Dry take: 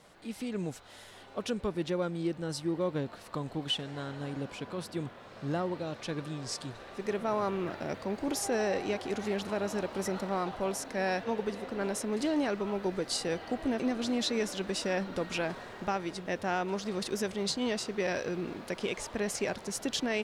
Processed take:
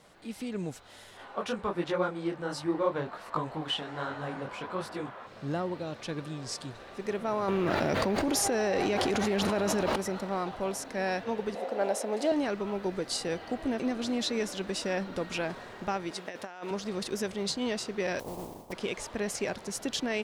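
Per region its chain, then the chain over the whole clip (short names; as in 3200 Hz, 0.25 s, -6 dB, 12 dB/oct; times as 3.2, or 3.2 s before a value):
1.17–5.27 bell 1100 Hz +12.5 dB 2.3 oct + detuned doubles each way 47 cents
7.48–9.96 notch 7900 Hz, Q 25 + fast leveller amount 100%
11.55–12.32 HPF 260 Hz + band shelf 640 Hz +9.5 dB 1 oct
16.11–16.71 HPF 540 Hz 6 dB/oct + negative-ratio compressor -38 dBFS, ratio -0.5
18.19–18.71 spectral contrast lowered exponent 0.31 + steep low-pass 990 Hz 48 dB/oct + modulation noise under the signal 13 dB
whole clip: dry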